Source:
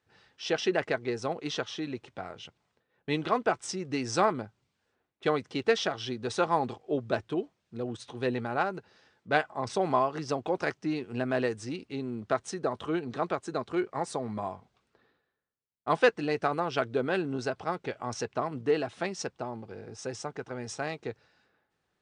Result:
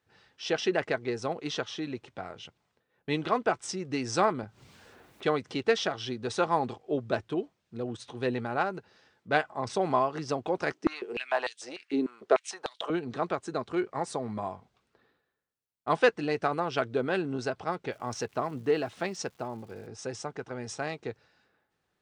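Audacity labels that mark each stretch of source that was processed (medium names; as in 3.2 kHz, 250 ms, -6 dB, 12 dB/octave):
4.430000	5.610000	upward compressor, threshold -35 dBFS
10.720000	12.900000	step-sequenced high-pass 6.7 Hz 300–3500 Hz
17.910000	19.860000	crackle 420 per s -50 dBFS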